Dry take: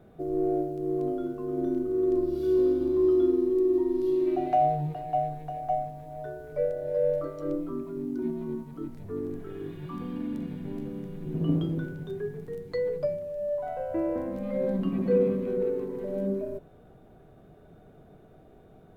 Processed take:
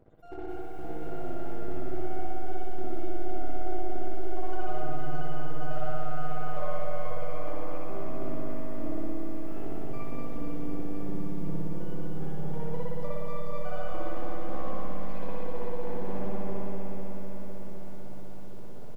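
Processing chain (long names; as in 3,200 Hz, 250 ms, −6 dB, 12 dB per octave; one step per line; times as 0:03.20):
time-frequency cells dropped at random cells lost 63%
0:11.59–0:13.01: low-pass filter 1,200 Hz 12 dB per octave
gate on every frequency bin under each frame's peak −15 dB strong
downward compressor 20 to 1, threshold −36 dBFS, peak gain reduction 17 dB
half-wave rectification
repeating echo 110 ms, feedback 57%, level −8 dB
spring reverb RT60 2.1 s, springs 58 ms, chirp 25 ms, DRR −7 dB
feedback echo at a low word length 253 ms, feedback 80%, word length 10 bits, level −6 dB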